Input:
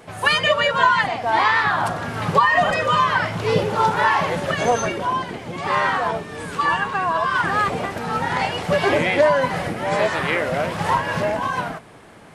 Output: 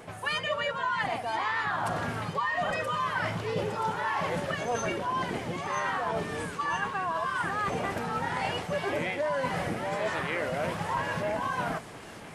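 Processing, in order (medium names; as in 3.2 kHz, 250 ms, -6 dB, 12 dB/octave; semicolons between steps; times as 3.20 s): peaking EQ 4.2 kHz -2.5 dB; reverse; compression 6:1, threshold -28 dBFS, peak gain reduction 16.5 dB; reverse; feedback echo behind a high-pass 977 ms, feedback 57%, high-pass 4.3 kHz, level -5.5 dB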